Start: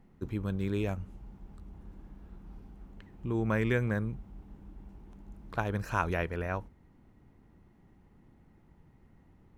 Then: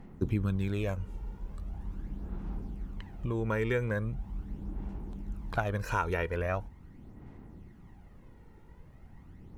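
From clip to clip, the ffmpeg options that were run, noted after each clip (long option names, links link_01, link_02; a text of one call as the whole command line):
ffmpeg -i in.wav -af "acompressor=threshold=-38dB:ratio=2,aphaser=in_gain=1:out_gain=1:delay=2.2:decay=0.47:speed=0.41:type=sinusoidal,volume=5.5dB" out.wav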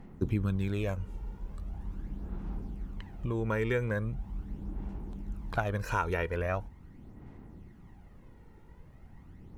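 ffmpeg -i in.wav -af anull out.wav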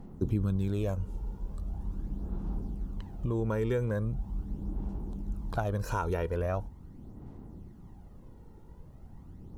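ffmpeg -i in.wav -filter_complex "[0:a]equalizer=frequency=2100:width=1.2:gain=-12.5,asplit=2[link_01][link_02];[link_02]alimiter=level_in=3.5dB:limit=-24dB:level=0:latency=1:release=35,volume=-3.5dB,volume=-2dB[link_03];[link_01][link_03]amix=inputs=2:normalize=0,volume=-2dB" out.wav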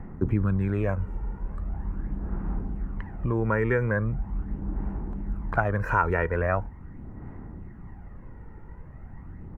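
ffmpeg -i in.wav -filter_complex "[0:a]firequalizer=gain_entry='entry(470,0);entry(1900,13);entry(3500,-16)':delay=0.05:min_phase=1,acrossover=split=140[link_01][link_02];[link_01]acompressor=mode=upward:threshold=-40dB:ratio=2.5[link_03];[link_03][link_02]amix=inputs=2:normalize=0,volume=4.5dB" out.wav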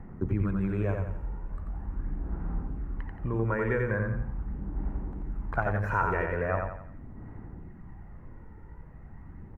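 ffmpeg -i in.wav -af "aecho=1:1:88|176|264|352|440:0.631|0.259|0.106|0.0435|0.0178,volume=-5dB" out.wav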